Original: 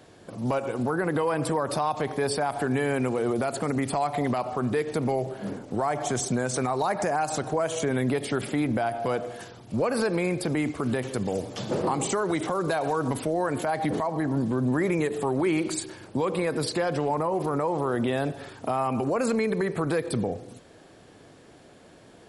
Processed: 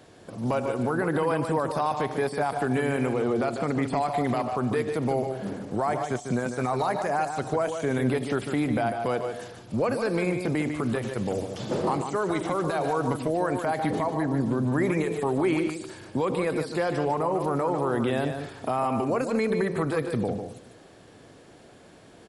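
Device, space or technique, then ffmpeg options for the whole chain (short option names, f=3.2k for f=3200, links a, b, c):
de-esser from a sidechain: -filter_complex "[0:a]asettb=1/sr,asplit=3[a][b][c];[a]atrim=end=3.064[d];[b]atrim=start=3.06:end=3.97,asetpts=PTS-STARTPTS,afade=t=in:d=0.004:c=qsin,afade=t=out:st=0.906:d=0.004:c=qsin,lowpass=6.4k[e];[c]atrim=start=3.966[f];[d][e]acrossfade=d=0.004:c1=hsin:c2=qsin[g];[g][f]acrossfade=d=0.004:c1=qsin:c2=hsin,asplit=2[h][i];[i]highpass=f=5.4k:w=0.5412,highpass=f=5.4k:w=1.3066,apad=whole_len=982690[j];[h][j]sidechaincompress=threshold=-45dB:ratio=12:attack=1.6:release=23,aecho=1:1:148:0.422"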